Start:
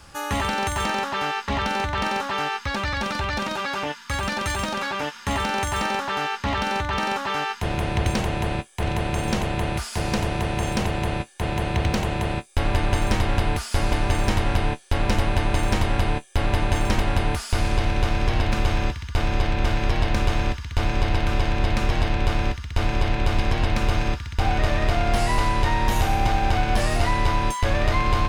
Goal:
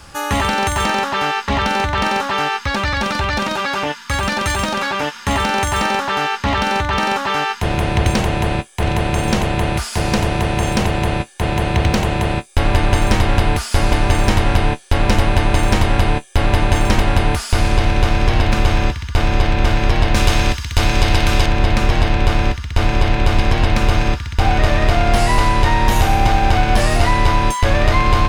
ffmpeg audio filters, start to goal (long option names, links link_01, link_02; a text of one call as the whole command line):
ffmpeg -i in.wav -filter_complex "[0:a]asettb=1/sr,asplit=3[link_01][link_02][link_03];[link_01]atrim=end=20.154[link_04];[link_02]atrim=start=20.15:end=21.46,asetpts=PTS-STARTPTS,afade=type=in:duration=0.004:curve=qsin,afade=type=out:start_time=1.306:duration=0.004:curve=qsin,highshelf=frequency=3400:gain=10.5[link_05];[link_03]atrim=start=21.456[link_06];[link_04][link_05]acrossfade=duration=0.004:curve1=hsin:curve2=qsin[link_07];[link_07][link_06]acrossfade=duration=0.004:curve1=qsin:curve2=hsin,volume=7dB" out.wav